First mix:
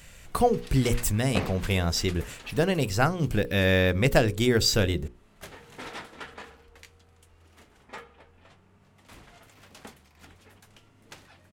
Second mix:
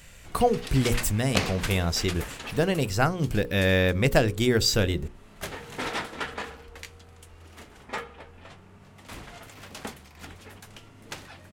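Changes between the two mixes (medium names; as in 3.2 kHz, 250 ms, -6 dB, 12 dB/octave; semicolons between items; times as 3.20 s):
first sound +8.5 dB; second sound: remove low-pass 1 kHz 6 dB/octave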